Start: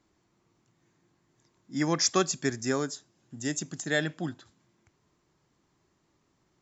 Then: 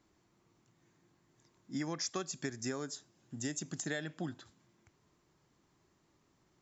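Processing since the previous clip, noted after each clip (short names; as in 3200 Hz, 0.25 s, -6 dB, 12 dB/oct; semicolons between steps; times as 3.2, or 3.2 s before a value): compressor 12:1, threshold -33 dBFS, peak gain reduction 14 dB; gain -1 dB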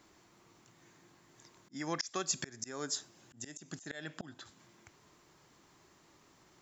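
low shelf 350 Hz -8.5 dB; auto swell 0.41 s; gain +11.5 dB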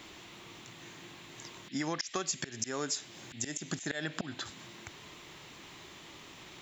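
compressor 6:1, threshold -43 dBFS, peak gain reduction 14 dB; band noise 1800–4000 Hz -67 dBFS; gain +11.5 dB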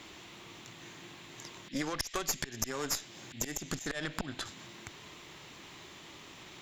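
added harmonics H 4 -10 dB, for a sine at -18 dBFS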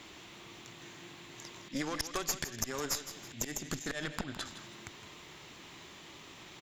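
feedback echo 0.162 s, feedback 36%, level -12 dB; gain -1 dB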